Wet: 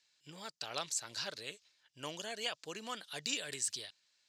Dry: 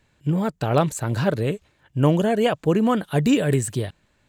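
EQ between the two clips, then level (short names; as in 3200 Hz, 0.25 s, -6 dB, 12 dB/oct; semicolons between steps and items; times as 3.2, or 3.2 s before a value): band-pass 5100 Hz, Q 3.2; +5.5 dB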